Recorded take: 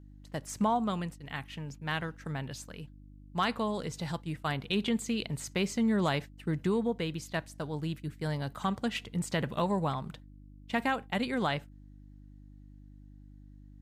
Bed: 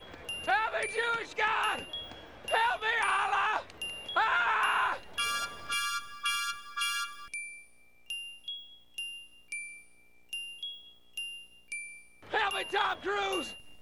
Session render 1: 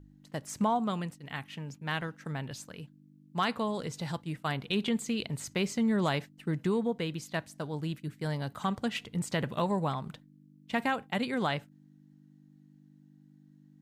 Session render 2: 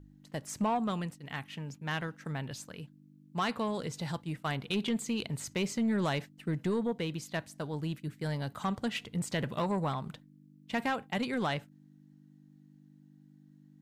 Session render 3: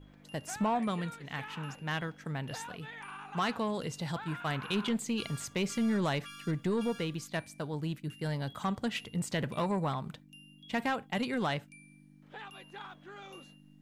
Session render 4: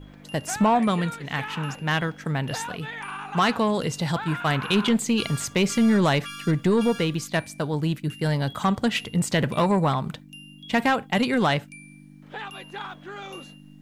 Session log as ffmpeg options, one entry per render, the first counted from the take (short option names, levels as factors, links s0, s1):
-af "bandreject=f=50:t=h:w=4,bandreject=f=100:t=h:w=4"
-af "asoftclip=type=tanh:threshold=0.0708"
-filter_complex "[1:a]volume=0.141[s0];[0:a][s0]amix=inputs=2:normalize=0"
-af "volume=3.35"